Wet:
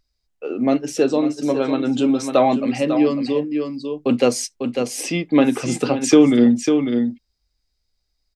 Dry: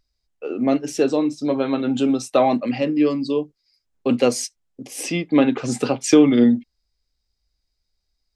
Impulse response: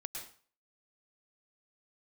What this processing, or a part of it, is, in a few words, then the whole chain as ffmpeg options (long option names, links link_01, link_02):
ducked delay: -filter_complex "[0:a]asplit=3[link_01][link_02][link_03];[link_02]adelay=548,volume=-6dB[link_04];[link_03]apad=whole_len=392505[link_05];[link_04][link_05]sidechaincompress=threshold=-21dB:ratio=8:attack=5.3:release=172[link_06];[link_01][link_06]amix=inputs=2:normalize=0,volume=1dB"